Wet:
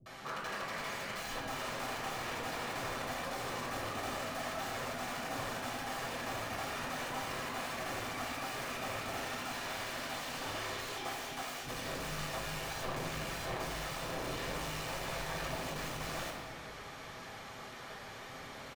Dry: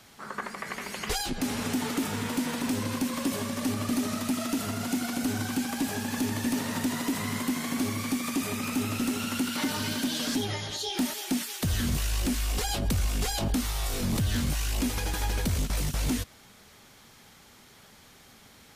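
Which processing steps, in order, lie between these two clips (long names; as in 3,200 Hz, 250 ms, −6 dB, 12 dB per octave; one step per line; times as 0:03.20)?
reversed playback
downward compressor 20 to 1, threshold −38 dBFS, peak gain reduction 15.5 dB
reversed playback
wrap-around overflow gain 38.5 dB
multiband delay without the direct sound lows, highs 60 ms, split 300 Hz
mid-hump overdrive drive 12 dB, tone 1,300 Hz, clips at −29 dBFS
convolution reverb RT60 1.6 s, pre-delay 8 ms, DRR −2 dB
level +1 dB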